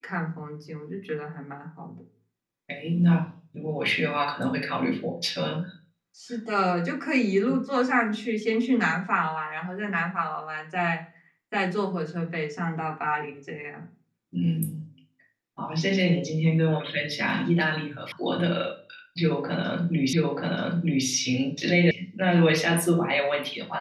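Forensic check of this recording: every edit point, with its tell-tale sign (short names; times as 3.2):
18.12 sound cut off
20.13 repeat of the last 0.93 s
21.91 sound cut off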